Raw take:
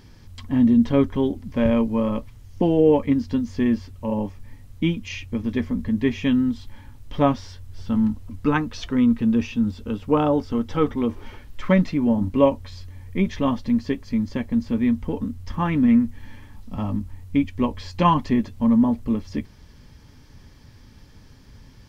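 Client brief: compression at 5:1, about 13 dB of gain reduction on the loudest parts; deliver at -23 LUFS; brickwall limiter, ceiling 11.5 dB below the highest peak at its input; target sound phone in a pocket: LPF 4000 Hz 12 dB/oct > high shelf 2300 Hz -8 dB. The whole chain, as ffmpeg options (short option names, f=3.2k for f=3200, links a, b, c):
-af "acompressor=threshold=-27dB:ratio=5,alimiter=level_in=3.5dB:limit=-24dB:level=0:latency=1,volume=-3.5dB,lowpass=4k,highshelf=f=2.3k:g=-8,volume=14.5dB"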